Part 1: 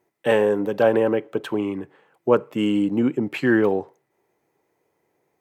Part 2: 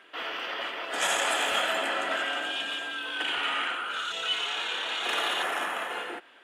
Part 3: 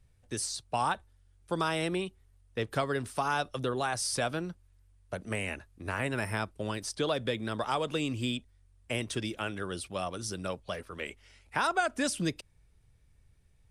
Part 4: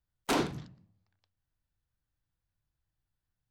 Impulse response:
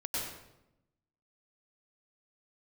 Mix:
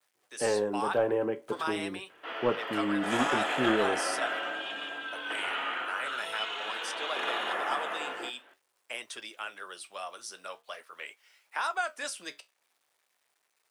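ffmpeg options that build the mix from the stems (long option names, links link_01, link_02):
-filter_complex "[0:a]adelay=150,volume=-9dB[link_01];[1:a]highshelf=frequency=4300:gain=-10,adelay=2100,volume=-1dB[link_02];[2:a]acrusher=bits=10:mix=0:aa=0.000001,highpass=850,volume=0dB[link_03];[3:a]acompressor=threshold=-36dB:ratio=6,adelay=1200,volume=-13dB[link_04];[link_01][link_02][link_03][link_04]amix=inputs=4:normalize=0,equalizer=frequency=680:width=0.31:gain=4,aeval=exprs='0.398*(cos(1*acos(clip(val(0)/0.398,-1,1)))-cos(1*PI/2))+0.0794*(cos(2*acos(clip(val(0)/0.398,-1,1)))-cos(2*PI/2))+0.0178*(cos(4*acos(clip(val(0)/0.398,-1,1)))-cos(4*PI/2))':channel_layout=same,flanger=delay=8.9:depth=6.8:regen=-62:speed=0.44:shape=sinusoidal"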